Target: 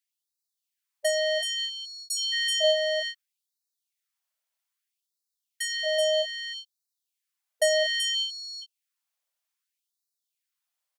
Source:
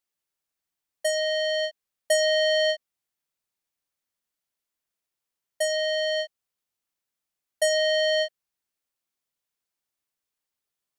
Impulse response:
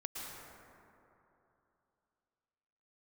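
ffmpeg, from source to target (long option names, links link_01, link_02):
-filter_complex "[0:a]asplit=2[link_01][link_02];[link_02]aecho=0:1:379:0.596[link_03];[link_01][link_03]amix=inputs=2:normalize=0,afftfilt=real='re*gte(b*sr/1024,470*pow(3800/470,0.5+0.5*sin(2*PI*0.62*pts/sr)))':imag='im*gte(b*sr/1024,470*pow(3800/470,0.5+0.5*sin(2*PI*0.62*pts/sr)))':win_size=1024:overlap=0.75"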